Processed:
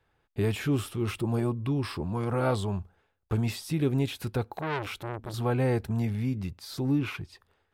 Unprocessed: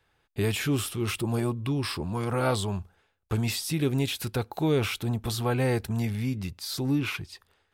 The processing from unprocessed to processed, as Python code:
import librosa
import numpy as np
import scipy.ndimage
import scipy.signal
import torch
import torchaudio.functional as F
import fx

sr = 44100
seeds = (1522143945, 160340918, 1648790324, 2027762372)

y = fx.high_shelf(x, sr, hz=2200.0, db=-9.5)
y = fx.transformer_sat(y, sr, knee_hz=1500.0, at=(4.56, 5.34))